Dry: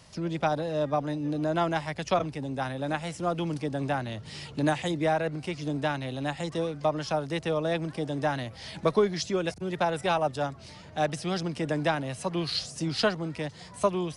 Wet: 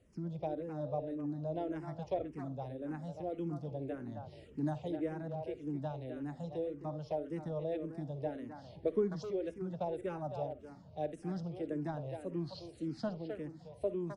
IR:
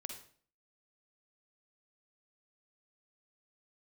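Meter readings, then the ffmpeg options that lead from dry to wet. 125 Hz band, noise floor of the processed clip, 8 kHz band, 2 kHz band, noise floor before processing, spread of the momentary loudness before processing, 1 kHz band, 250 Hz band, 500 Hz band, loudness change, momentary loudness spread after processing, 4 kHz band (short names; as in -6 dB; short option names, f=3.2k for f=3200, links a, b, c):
-9.0 dB, -56 dBFS, under -20 dB, -21.5 dB, -47 dBFS, 7 LU, -15.0 dB, -8.0 dB, -9.0 dB, -10.0 dB, 5 LU, -23.5 dB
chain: -filter_complex "[0:a]firequalizer=gain_entry='entry(480,0);entry(1100,-13);entry(3000,-16)':delay=0.05:min_phase=1,asplit=2[a][b];[b]adelay=260,highpass=300,lowpass=3.4k,asoftclip=type=hard:threshold=-22dB,volume=-6dB[c];[a][c]amix=inputs=2:normalize=0,asplit=2[d][e];[1:a]atrim=start_sample=2205,atrim=end_sample=3969[f];[e][f]afir=irnorm=-1:irlink=0,volume=-3dB[g];[d][g]amix=inputs=2:normalize=0,asplit=2[h][i];[i]afreqshift=-1.8[j];[h][j]amix=inputs=2:normalize=1,volume=-9dB"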